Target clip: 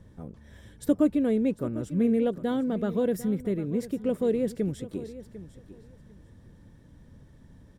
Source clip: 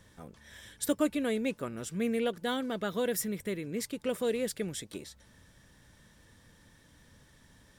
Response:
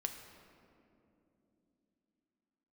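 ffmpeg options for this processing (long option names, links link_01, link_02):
-filter_complex "[0:a]tiltshelf=frequency=810:gain=10,asplit=2[link_01][link_02];[link_02]aecho=0:1:749|1498:0.168|0.0302[link_03];[link_01][link_03]amix=inputs=2:normalize=0"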